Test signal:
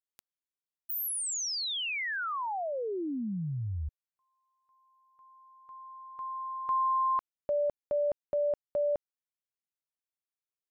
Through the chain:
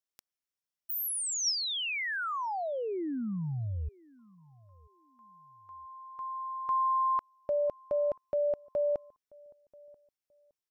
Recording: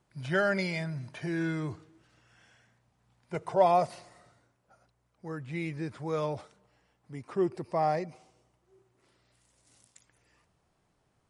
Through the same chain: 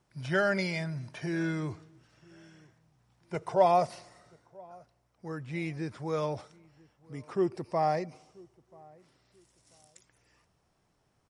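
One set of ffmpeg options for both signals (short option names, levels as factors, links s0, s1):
-filter_complex "[0:a]equalizer=f=5500:w=7.9:g=7,asplit=2[s0][s1];[s1]adelay=985,lowpass=f=890:p=1,volume=0.0631,asplit=2[s2][s3];[s3]adelay=985,lowpass=f=890:p=1,volume=0.29[s4];[s0][s2][s4]amix=inputs=3:normalize=0"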